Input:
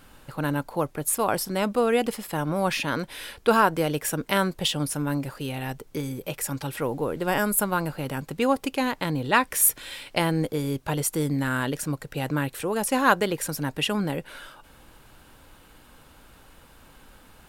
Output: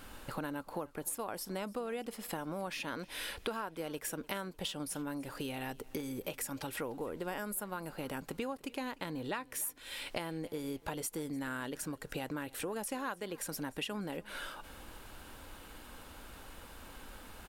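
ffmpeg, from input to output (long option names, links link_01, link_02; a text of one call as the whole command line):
ffmpeg -i in.wav -af "equalizer=frequency=140:width_type=o:width=0.38:gain=-10.5,acompressor=threshold=-38dB:ratio=8,aecho=1:1:299|598|897:0.075|0.0292|0.0114,volume=1.5dB" out.wav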